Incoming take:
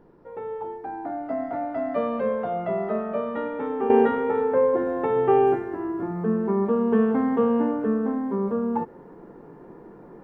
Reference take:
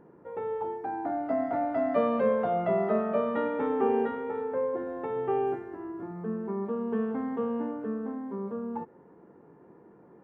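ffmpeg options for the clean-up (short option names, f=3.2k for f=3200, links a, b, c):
-af "agate=range=-21dB:threshold=-37dB,asetnsamples=n=441:p=0,asendcmd='3.9 volume volume -9.5dB',volume=0dB"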